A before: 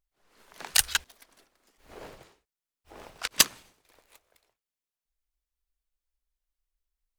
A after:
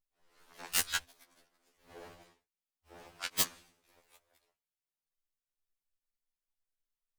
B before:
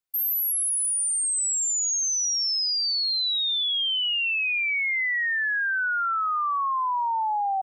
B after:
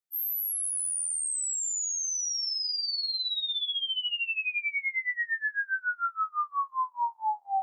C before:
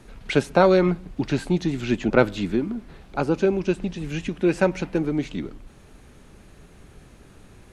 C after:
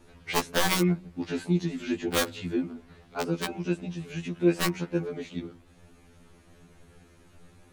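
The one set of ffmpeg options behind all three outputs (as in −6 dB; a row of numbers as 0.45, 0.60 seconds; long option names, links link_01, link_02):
-af "aeval=exprs='(mod(2.99*val(0)+1,2)-1)/2.99':channel_layout=same,afftfilt=real='re*2*eq(mod(b,4),0)':imag='im*2*eq(mod(b,4),0)':win_size=2048:overlap=0.75,volume=-3.5dB"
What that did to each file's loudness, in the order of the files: −8.0, −6.0, −6.0 LU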